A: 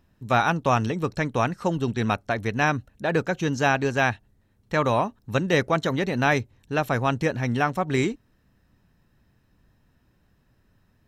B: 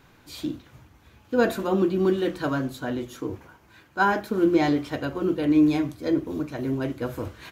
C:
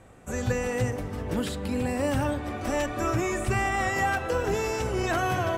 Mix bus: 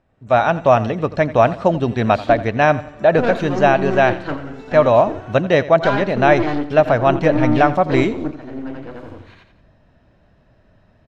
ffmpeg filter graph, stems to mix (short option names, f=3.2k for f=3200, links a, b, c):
-filter_complex "[0:a]equalizer=f=630:w=3.5:g=12.5,volume=-4.5dB,asplit=3[a][b][c];[b]volume=-17dB[d];[1:a]agate=range=-33dB:threshold=-43dB:ratio=3:detection=peak,aeval=exprs='(tanh(14.1*val(0)+0.7)-tanh(0.7))/14.1':c=same,adelay=1850,volume=-2.5dB,asplit=2[e][f];[f]volume=-13dB[g];[2:a]acompressor=threshold=-34dB:ratio=3,volume=-16dB,asplit=2[h][i];[i]volume=-3dB[j];[c]apad=whole_len=412813[k];[e][k]sidechaingate=range=-12dB:threshold=-55dB:ratio=16:detection=peak[l];[d][g][j]amix=inputs=3:normalize=0,aecho=0:1:86|172|258|344|430:1|0.37|0.137|0.0507|0.0187[m];[a][l][h][m]amix=inputs=4:normalize=0,lowpass=4k,dynaudnorm=f=120:g=5:m=13dB"